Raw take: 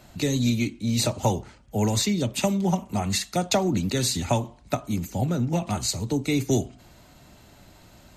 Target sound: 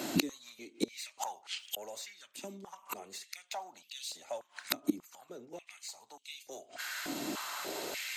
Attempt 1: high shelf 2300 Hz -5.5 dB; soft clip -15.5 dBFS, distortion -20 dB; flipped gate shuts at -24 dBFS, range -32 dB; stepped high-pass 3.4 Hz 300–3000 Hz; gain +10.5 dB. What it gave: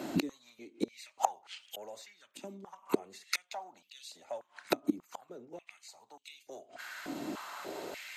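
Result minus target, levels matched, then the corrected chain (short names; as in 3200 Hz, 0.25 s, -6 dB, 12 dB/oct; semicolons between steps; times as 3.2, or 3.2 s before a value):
4000 Hz band -5.5 dB
high shelf 2300 Hz +5.5 dB; soft clip -15.5 dBFS, distortion -17 dB; flipped gate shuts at -24 dBFS, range -32 dB; stepped high-pass 3.4 Hz 300–3000 Hz; gain +10.5 dB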